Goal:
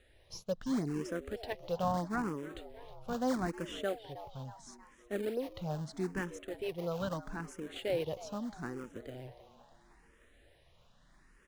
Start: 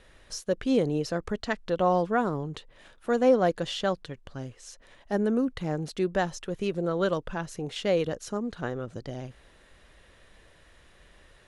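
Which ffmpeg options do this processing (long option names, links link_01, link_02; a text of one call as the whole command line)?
ffmpeg -i in.wav -filter_complex "[0:a]asplit=3[link_01][link_02][link_03];[link_01]afade=type=out:start_time=2.54:duration=0.02[link_04];[link_02]asubboost=boost=5.5:cutoff=160,afade=type=in:start_time=2.54:duration=0.02,afade=type=out:start_time=3.12:duration=0.02[link_05];[link_03]afade=type=in:start_time=3.12:duration=0.02[link_06];[link_04][link_05][link_06]amix=inputs=3:normalize=0,asettb=1/sr,asplit=3[link_07][link_08][link_09];[link_07]atrim=end=3.944[link_10];[link_08]atrim=start=3.94:end=4.45,asetpts=PTS-STARTPTS,afade=type=in:duration=0.004:curve=qsin,afade=type=out:start_time=0.506:duration=0.004:curve=qsin,lowpass=1300[link_11];[link_09]atrim=start=4.446[link_12];[link_10][link_11]acrossfade=duration=0.004:curve1=hsin:curve2=qsin[link_13];[link_13][link_12]acrossfade=duration=0.004:curve1=qsin:curve2=hsin,asplit=2[link_14][link_15];[link_15]acrusher=samples=38:mix=1:aa=0.000001:lfo=1:lforange=60.8:lforate=3.3,volume=-8.5dB[link_16];[link_14][link_16]amix=inputs=2:normalize=0,asplit=6[link_17][link_18][link_19][link_20][link_21][link_22];[link_18]adelay=316,afreqshift=110,volume=-15.5dB[link_23];[link_19]adelay=632,afreqshift=220,volume=-21.3dB[link_24];[link_20]adelay=948,afreqshift=330,volume=-27.2dB[link_25];[link_21]adelay=1264,afreqshift=440,volume=-33dB[link_26];[link_22]adelay=1580,afreqshift=550,volume=-38.9dB[link_27];[link_17][link_23][link_24][link_25][link_26][link_27]amix=inputs=6:normalize=0,asplit=2[link_28][link_29];[link_29]afreqshift=0.77[link_30];[link_28][link_30]amix=inputs=2:normalize=1,volume=-7.5dB" out.wav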